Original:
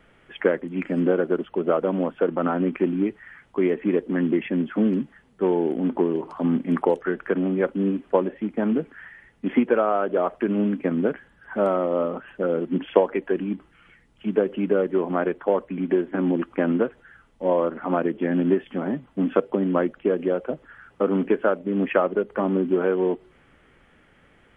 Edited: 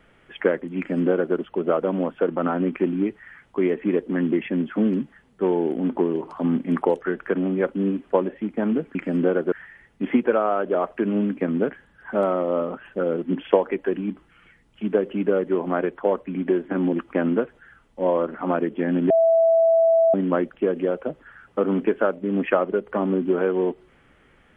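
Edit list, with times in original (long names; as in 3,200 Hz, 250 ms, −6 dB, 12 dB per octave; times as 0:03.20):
0:00.78–0:01.35: duplicate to 0:08.95
0:18.53–0:19.57: beep over 659 Hz −13.5 dBFS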